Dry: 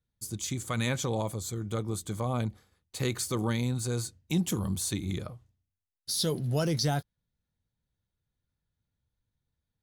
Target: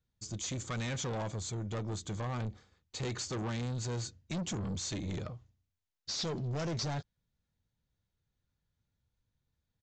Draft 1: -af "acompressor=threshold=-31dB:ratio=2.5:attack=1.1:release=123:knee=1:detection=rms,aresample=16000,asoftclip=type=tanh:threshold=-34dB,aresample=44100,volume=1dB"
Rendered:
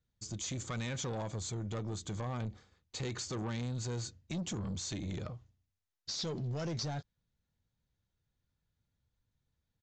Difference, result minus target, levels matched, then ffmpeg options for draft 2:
downward compressor: peak gain reduction +7.5 dB
-af "aresample=16000,asoftclip=type=tanh:threshold=-34dB,aresample=44100,volume=1dB"

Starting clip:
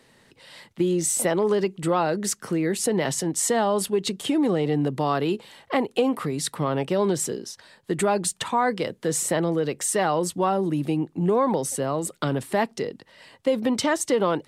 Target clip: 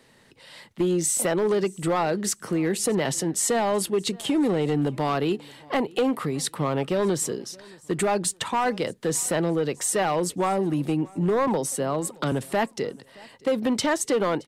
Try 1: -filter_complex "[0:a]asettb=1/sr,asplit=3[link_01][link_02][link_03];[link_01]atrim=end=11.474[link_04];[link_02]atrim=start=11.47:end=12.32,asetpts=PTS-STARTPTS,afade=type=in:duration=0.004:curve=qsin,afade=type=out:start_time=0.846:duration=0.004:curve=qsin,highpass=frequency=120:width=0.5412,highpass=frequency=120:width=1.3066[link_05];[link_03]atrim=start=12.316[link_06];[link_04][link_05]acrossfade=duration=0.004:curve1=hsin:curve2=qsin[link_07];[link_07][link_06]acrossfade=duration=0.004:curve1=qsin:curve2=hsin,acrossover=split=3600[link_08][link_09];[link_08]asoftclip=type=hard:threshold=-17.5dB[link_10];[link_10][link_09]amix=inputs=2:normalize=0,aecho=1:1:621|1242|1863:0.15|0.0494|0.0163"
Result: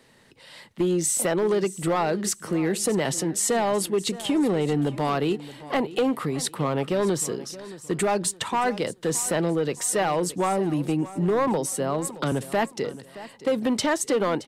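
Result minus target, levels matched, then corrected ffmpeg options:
echo-to-direct +8 dB
-filter_complex "[0:a]asettb=1/sr,asplit=3[link_01][link_02][link_03];[link_01]atrim=end=11.474[link_04];[link_02]atrim=start=11.47:end=12.32,asetpts=PTS-STARTPTS,afade=type=in:duration=0.004:curve=qsin,afade=type=out:start_time=0.846:duration=0.004:curve=qsin,highpass=frequency=120:width=0.5412,highpass=frequency=120:width=1.3066[link_05];[link_03]atrim=start=12.316[link_06];[link_04][link_05]acrossfade=duration=0.004:curve1=hsin:curve2=qsin[link_07];[link_07][link_06]acrossfade=duration=0.004:curve1=qsin:curve2=hsin,acrossover=split=3600[link_08][link_09];[link_08]asoftclip=type=hard:threshold=-17.5dB[link_10];[link_10][link_09]amix=inputs=2:normalize=0,aecho=1:1:621|1242:0.0596|0.0197"

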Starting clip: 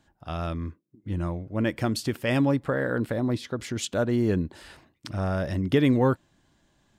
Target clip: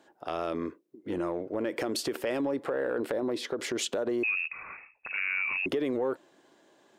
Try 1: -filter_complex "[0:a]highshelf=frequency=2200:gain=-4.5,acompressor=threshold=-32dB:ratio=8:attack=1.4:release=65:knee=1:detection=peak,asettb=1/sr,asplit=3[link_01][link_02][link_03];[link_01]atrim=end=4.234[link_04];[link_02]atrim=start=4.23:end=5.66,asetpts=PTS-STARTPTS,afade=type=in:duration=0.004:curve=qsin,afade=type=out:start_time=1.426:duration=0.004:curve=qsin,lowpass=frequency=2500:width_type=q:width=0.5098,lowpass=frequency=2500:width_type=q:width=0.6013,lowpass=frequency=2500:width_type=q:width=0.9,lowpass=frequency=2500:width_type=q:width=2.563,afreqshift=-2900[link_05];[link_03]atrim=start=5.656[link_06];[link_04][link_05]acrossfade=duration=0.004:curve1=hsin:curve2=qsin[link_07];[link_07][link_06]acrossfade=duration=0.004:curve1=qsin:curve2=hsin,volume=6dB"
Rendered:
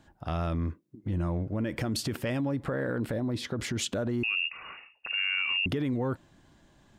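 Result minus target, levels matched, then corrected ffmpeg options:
500 Hz band −5.0 dB
-filter_complex "[0:a]highpass=frequency=410:width_type=q:width=2.2,highshelf=frequency=2200:gain=-4.5,acompressor=threshold=-32dB:ratio=8:attack=1.4:release=65:knee=1:detection=peak,asettb=1/sr,asplit=3[link_01][link_02][link_03];[link_01]atrim=end=4.234[link_04];[link_02]atrim=start=4.23:end=5.66,asetpts=PTS-STARTPTS,afade=type=in:duration=0.004:curve=qsin,afade=type=out:start_time=1.426:duration=0.004:curve=qsin,lowpass=frequency=2500:width_type=q:width=0.5098,lowpass=frequency=2500:width_type=q:width=0.6013,lowpass=frequency=2500:width_type=q:width=0.9,lowpass=frequency=2500:width_type=q:width=2.563,afreqshift=-2900[link_05];[link_03]atrim=start=5.656[link_06];[link_04][link_05]acrossfade=duration=0.004:curve1=hsin:curve2=qsin[link_07];[link_07][link_06]acrossfade=duration=0.004:curve1=qsin:curve2=hsin,volume=6dB"

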